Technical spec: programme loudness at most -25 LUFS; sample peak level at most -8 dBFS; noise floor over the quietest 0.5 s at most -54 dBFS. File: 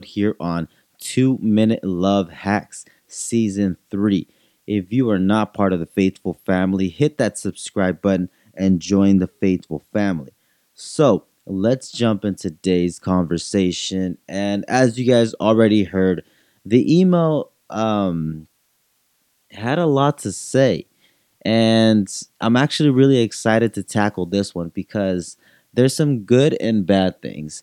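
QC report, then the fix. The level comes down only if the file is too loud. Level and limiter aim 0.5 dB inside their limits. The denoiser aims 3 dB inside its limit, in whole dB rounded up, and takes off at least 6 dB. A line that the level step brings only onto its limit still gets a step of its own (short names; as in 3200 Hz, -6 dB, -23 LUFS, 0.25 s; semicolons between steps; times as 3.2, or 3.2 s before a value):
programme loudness -19.0 LUFS: fail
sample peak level -2.0 dBFS: fail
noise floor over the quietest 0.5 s -65 dBFS: OK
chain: gain -6.5 dB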